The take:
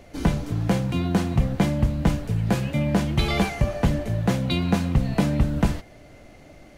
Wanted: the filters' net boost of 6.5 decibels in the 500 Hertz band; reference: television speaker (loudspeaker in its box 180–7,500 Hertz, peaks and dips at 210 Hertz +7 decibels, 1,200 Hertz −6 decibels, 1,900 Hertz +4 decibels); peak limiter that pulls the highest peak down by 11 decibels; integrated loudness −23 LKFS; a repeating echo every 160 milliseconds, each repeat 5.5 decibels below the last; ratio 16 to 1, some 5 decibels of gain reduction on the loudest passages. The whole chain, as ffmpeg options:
ffmpeg -i in.wav -af "equalizer=frequency=500:width_type=o:gain=8,acompressor=threshold=-18dB:ratio=16,alimiter=limit=-19.5dB:level=0:latency=1,highpass=frequency=180:width=0.5412,highpass=frequency=180:width=1.3066,equalizer=frequency=210:width_type=q:width=4:gain=7,equalizer=frequency=1200:width_type=q:width=4:gain=-6,equalizer=frequency=1900:width_type=q:width=4:gain=4,lowpass=frequency=7500:width=0.5412,lowpass=frequency=7500:width=1.3066,aecho=1:1:160|320|480|640|800|960|1120:0.531|0.281|0.149|0.079|0.0419|0.0222|0.0118,volume=4.5dB" out.wav

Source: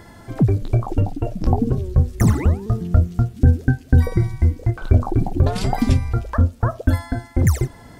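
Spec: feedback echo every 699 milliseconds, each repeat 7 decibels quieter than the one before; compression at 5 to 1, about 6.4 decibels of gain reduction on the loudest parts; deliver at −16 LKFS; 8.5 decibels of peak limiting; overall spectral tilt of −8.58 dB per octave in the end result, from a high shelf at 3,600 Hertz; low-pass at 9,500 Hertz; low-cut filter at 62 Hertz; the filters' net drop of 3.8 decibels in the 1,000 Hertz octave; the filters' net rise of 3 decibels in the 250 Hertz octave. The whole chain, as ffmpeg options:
ffmpeg -i in.wav -af "highpass=62,lowpass=9500,equalizer=frequency=250:width_type=o:gain=4,equalizer=frequency=1000:width_type=o:gain=-5.5,highshelf=frequency=3600:gain=-5.5,acompressor=threshold=-16dB:ratio=5,alimiter=limit=-14.5dB:level=0:latency=1,aecho=1:1:699|1398|2097|2796|3495:0.447|0.201|0.0905|0.0407|0.0183,volume=9dB" out.wav

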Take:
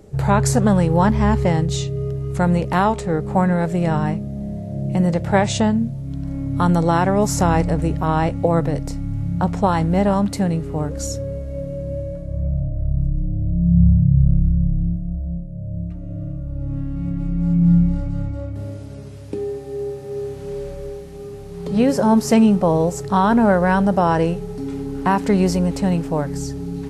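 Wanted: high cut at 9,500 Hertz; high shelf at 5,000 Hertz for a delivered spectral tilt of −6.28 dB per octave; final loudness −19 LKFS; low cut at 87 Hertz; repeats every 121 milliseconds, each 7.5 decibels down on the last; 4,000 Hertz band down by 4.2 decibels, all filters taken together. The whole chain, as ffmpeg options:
ffmpeg -i in.wav -af "highpass=87,lowpass=9500,equalizer=frequency=4000:width_type=o:gain=-9,highshelf=frequency=5000:gain=6,aecho=1:1:121|242|363|484|605:0.422|0.177|0.0744|0.0312|0.0131,volume=0.5dB" out.wav

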